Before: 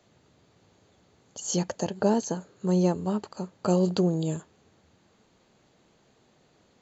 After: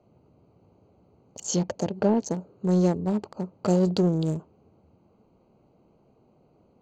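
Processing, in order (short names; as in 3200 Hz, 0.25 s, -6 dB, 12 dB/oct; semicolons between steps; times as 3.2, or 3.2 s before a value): Wiener smoothing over 25 samples; dynamic EQ 1200 Hz, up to -4 dB, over -42 dBFS, Q 1.3; in parallel at -5.5 dB: soft clip -26 dBFS, distortion -9 dB; 1.41–2.26 on the sum: treble ducked by the level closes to 1600 Hz, closed at -15.5 dBFS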